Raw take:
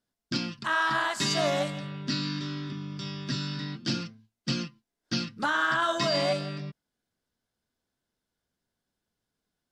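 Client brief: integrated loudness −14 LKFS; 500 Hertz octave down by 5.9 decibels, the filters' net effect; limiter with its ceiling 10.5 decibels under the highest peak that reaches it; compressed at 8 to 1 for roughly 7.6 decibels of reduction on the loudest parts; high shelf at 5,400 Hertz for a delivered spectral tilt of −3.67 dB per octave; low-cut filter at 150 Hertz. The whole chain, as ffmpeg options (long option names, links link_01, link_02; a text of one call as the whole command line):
ffmpeg -i in.wav -af "highpass=150,equalizer=frequency=500:width_type=o:gain=-8,highshelf=frequency=5400:gain=4.5,acompressor=threshold=-31dB:ratio=8,volume=24dB,alimiter=limit=-4.5dB:level=0:latency=1" out.wav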